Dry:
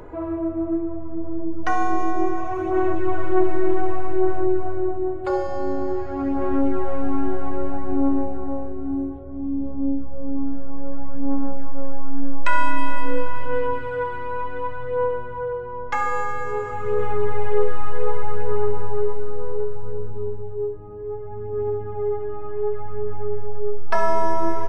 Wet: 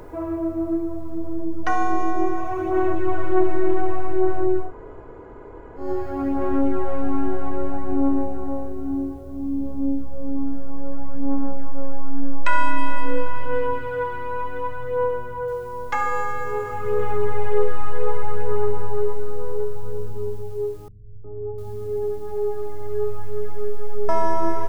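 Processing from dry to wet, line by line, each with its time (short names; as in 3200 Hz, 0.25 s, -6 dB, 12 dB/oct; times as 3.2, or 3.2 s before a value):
4.66–5.83 room tone, crossfade 0.16 s
15.48 noise floor step -67 dB -59 dB
20.88–24.09 three bands offset in time lows, mids, highs 0.36/0.7 s, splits 170/950 Hz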